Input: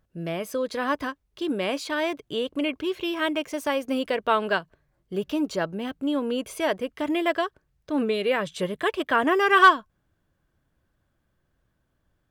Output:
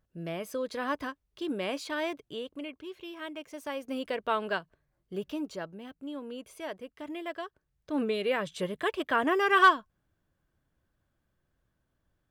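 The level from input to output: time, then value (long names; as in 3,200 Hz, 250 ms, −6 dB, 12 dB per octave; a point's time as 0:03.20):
0:02.08 −6 dB
0:02.73 −14.5 dB
0:03.30 −14.5 dB
0:04.11 −7 dB
0:05.18 −7 dB
0:05.83 −13.5 dB
0:07.35 −13.5 dB
0:07.96 −5 dB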